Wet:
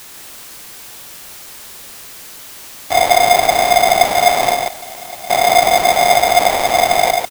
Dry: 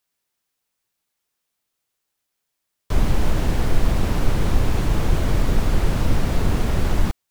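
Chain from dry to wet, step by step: 4.54–5.30 s: gate -7 dBFS, range -19 dB; added noise white -39 dBFS; on a send: delay 143 ms -4 dB; on the sum: polarity switched at an audio rate 710 Hz; trim +2.5 dB

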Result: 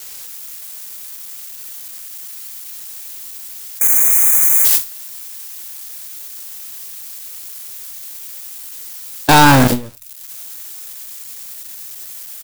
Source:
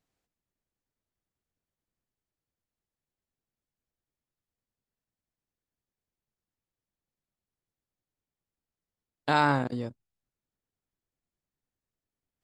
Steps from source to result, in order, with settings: zero-crossing glitches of -23.5 dBFS; delay 95 ms -18.5 dB; waveshaping leveller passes 5; time-frequency box 3.80–4.65 s, 2.5–6 kHz -26 dB; gate with hold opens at -11 dBFS; on a send at -4 dB: inverse Chebyshev band-stop 260–6300 Hz, stop band 60 dB + reverberation RT60 0.25 s, pre-delay 3 ms; on the sum: trim +6 dB

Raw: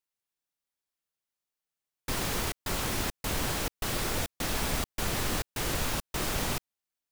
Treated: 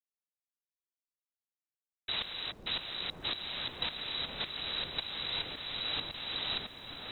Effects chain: level held to a coarse grid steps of 11 dB; frequency inversion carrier 3.9 kHz; on a send: delay with an opening low-pass 381 ms, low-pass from 400 Hz, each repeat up 1 oct, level 0 dB; on the sum: tremolo saw up 1.8 Hz, depth 75%; small samples zeroed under -60 dBFS

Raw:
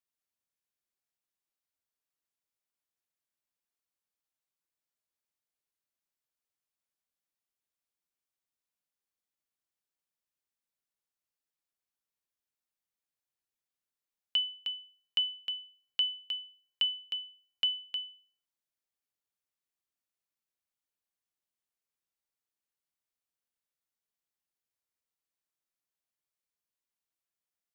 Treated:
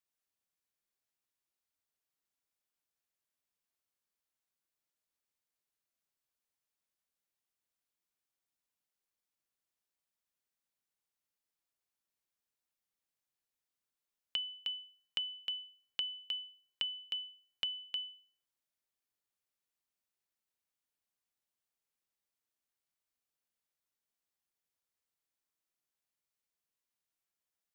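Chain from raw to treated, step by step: compression, threshold -34 dBFS, peak gain reduction 9 dB

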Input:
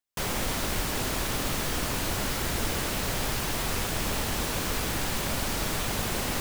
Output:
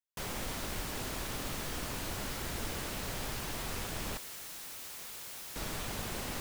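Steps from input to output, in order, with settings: 4.17–5.56 s: integer overflow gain 31.5 dB; trim -9 dB

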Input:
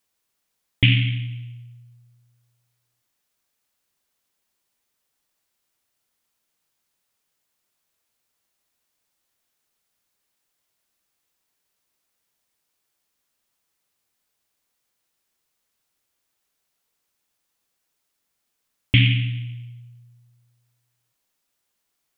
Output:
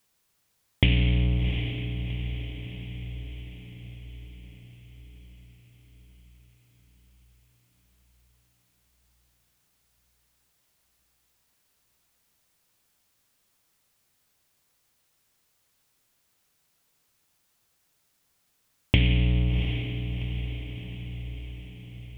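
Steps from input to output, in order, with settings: octave divider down 1 oct, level +3 dB; compression 6:1, threshold -23 dBFS, peak gain reduction 15 dB; on a send: echo that smears into a reverb 734 ms, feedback 55%, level -8 dB; on the sum: trim +4.5 dB

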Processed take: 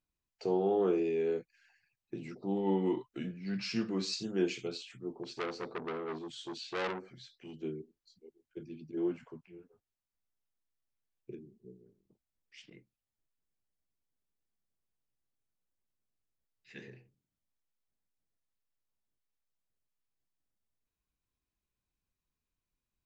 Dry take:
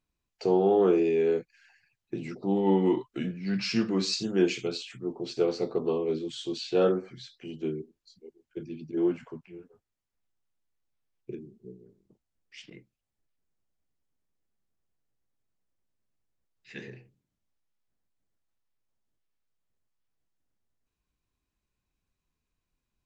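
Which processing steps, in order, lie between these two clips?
5.23–7.54 s: transformer saturation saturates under 2.1 kHz; trim -7 dB

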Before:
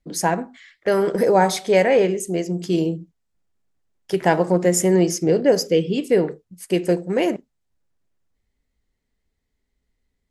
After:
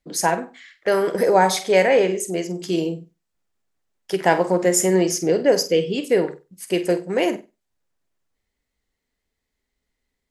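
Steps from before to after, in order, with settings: bass shelf 280 Hz -9.5 dB; flutter echo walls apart 8.2 m, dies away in 0.25 s; trim +2 dB

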